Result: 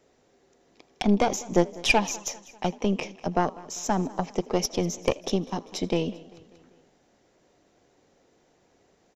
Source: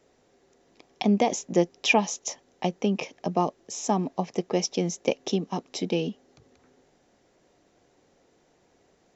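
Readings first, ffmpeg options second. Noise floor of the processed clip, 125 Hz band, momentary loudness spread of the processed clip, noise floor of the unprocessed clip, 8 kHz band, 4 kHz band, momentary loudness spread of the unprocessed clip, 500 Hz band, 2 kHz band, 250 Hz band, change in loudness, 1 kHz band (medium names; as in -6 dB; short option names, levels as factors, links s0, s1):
-65 dBFS, +0.5 dB, 10 LU, -65 dBFS, no reading, +0.5 dB, 9 LU, 0.0 dB, +0.5 dB, 0.0 dB, 0.0 dB, +0.5 dB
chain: -filter_complex "[0:a]asplit=2[s0][s1];[s1]asplit=4[s2][s3][s4][s5];[s2]adelay=80,afreqshift=64,volume=0.0794[s6];[s3]adelay=160,afreqshift=128,volume=0.0427[s7];[s4]adelay=240,afreqshift=192,volume=0.0232[s8];[s5]adelay=320,afreqshift=256,volume=0.0124[s9];[s6][s7][s8][s9]amix=inputs=4:normalize=0[s10];[s0][s10]amix=inputs=2:normalize=0,aeval=exprs='0.422*(cos(1*acos(clip(val(0)/0.422,-1,1)))-cos(1*PI/2))+0.075*(cos(4*acos(clip(val(0)/0.422,-1,1)))-cos(4*PI/2))':c=same,asplit=2[s11][s12];[s12]aecho=0:1:197|394|591|788:0.0891|0.0472|0.025|0.0133[s13];[s11][s13]amix=inputs=2:normalize=0"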